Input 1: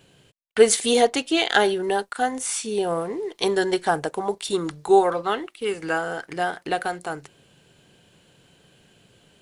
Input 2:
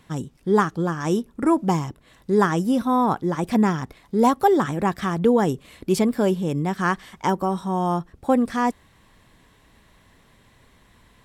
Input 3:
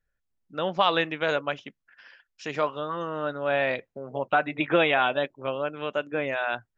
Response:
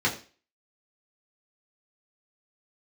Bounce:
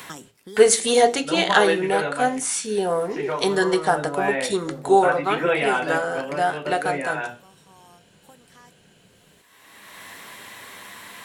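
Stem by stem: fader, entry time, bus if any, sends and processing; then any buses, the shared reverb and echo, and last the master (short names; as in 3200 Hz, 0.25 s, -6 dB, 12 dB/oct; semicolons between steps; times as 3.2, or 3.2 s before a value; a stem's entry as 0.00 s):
-0.5 dB, 0.00 s, send -18 dB, high shelf 3400 Hz +4 dB
-7.5 dB, 0.00 s, no send, tilt +4.5 dB/oct; resonator 100 Hz, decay 0.23 s, harmonics all, mix 60%; three-band squash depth 100%; auto duck -16 dB, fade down 1.50 s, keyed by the first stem
-8.5 dB, 0.70 s, send -4.5 dB, dry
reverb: on, RT60 0.35 s, pre-delay 3 ms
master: dry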